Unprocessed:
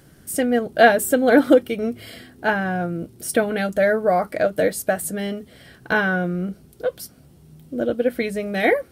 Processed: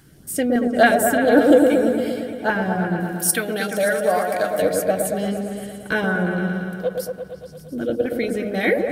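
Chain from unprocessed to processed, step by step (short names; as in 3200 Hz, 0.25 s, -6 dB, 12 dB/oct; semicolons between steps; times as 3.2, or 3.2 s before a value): LFO notch saw up 3.6 Hz 440–2800 Hz; 3–4.62 tilt +3 dB/oct; repeats that get brighter 0.115 s, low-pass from 750 Hz, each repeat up 1 oct, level -3 dB; ending taper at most 510 dB/s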